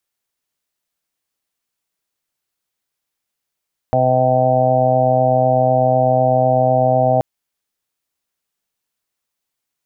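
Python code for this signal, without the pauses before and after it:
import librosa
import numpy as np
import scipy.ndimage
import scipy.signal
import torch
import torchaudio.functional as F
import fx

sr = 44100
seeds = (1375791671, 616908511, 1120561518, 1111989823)

y = fx.additive_steady(sr, length_s=3.28, hz=128.0, level_db=-19.0, upper_db=(-5, -17.0, -1, 4, 2.0, -15.5))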